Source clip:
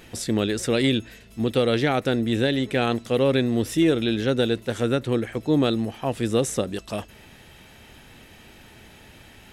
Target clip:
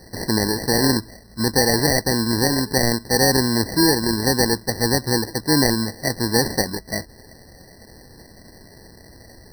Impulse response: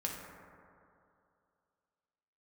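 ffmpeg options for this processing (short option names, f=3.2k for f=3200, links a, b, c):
-af "acrusher=samples=34:mix=1:aa=0.000001,highshelf=f=1.8k:t=q:w=3:g=9.5,afftfilt=real='re*eq(mod(floor(b*sr/1024/2000),2),0)':imag='im*eq(mod(floor(b*sr/1024/2000),2),0)':win_size=1024:overlap=0.75,volume=2.5dB"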